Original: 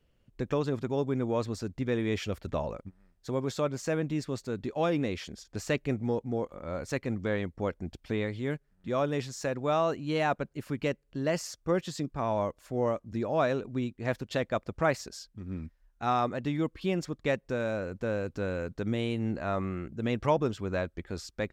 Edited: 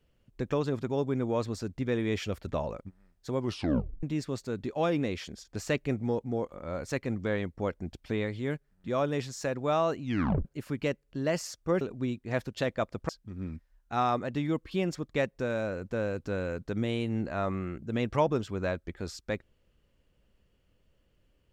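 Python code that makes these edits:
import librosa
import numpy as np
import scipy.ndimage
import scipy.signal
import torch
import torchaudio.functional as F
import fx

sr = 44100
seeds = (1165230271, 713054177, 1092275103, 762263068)

y = fx.edit(x, sr, fx.tape_stop(start_s=3.39, length_s=0.64),
    fx.tape_stop(start_s=10.02, length_s=0.43),
    fx.cut(start_s=11.81, length_s=1.74),
    fx.cut(start_s=14.83, length_s=0.36), tone=tone)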